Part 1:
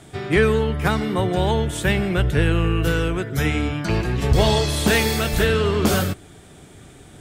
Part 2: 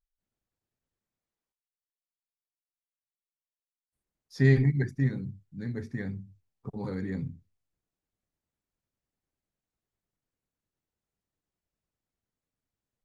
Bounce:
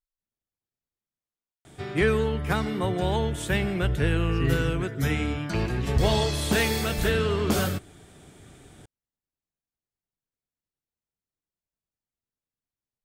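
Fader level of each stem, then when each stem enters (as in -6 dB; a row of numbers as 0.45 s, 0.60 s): -5.5 dB, -7.0 dB; 1.65 s, 0.00 s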